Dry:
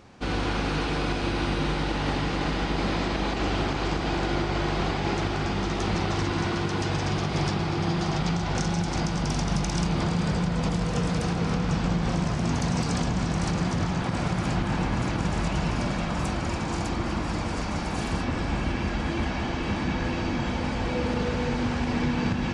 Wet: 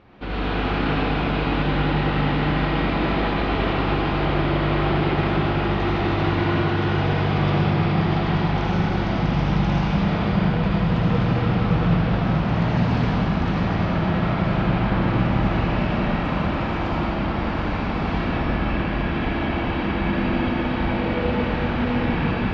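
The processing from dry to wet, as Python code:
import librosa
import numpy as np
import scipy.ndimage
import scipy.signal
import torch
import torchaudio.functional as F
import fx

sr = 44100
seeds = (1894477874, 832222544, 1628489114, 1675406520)

y = scipy.signal.sosfilt(scipy.signal.butter(4, 3500.0, 'lowpass', fs=sr, output='sos'), x)
y = fx.rev_freeverb(y, sr, rt60_s=2.5, hf_ratio=0.85, predelay_ms=40, drr_db=-6.0)
y = y * 10.0 ** (-1.5 / 20.0)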